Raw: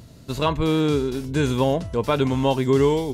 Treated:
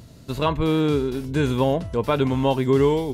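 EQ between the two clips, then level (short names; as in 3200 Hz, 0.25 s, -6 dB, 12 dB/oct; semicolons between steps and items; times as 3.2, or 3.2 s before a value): dynamic EQ 6500 Hz, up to -6 dB, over -49 dBFS, Q 0.97; 0.0 dB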